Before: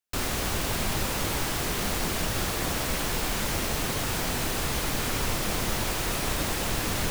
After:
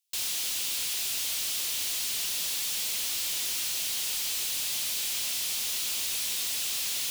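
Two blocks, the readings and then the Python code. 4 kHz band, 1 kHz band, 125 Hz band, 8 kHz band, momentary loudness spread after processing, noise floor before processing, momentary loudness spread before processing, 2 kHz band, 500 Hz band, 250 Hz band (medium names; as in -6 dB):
+2.0 dB, -17.0 dB, -27.0 dB, +3.0 dB, 0 LU, -30 dBFS, 0 LU, -7.0 dB, -20.0 dB, -23.5 dB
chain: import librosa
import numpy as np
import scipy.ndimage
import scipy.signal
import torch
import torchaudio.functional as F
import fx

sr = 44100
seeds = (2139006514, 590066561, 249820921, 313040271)

y = scipy.signal.sosfilt(scipy.signal.cheby2(4, 60, 840.0, 'highpass', fs=sr, output='sos'), x)
y = 10.0 ** (-36.5 / 20.0) * np.tanh(y / 10.0 ** (-36.5 / 20.0))
y = y * 10.0 ** (8.5 / 20.0)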